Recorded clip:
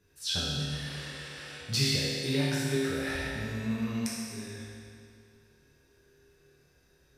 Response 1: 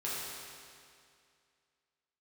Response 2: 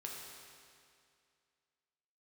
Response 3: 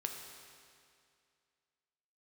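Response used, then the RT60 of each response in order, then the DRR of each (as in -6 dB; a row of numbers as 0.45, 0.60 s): 1; 2.3, 2.3, 2.3 s; -9.0, -2.5, 2.5 dB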